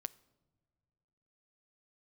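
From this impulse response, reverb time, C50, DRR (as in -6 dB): not exponential, 21.5 dB, 16.0 dB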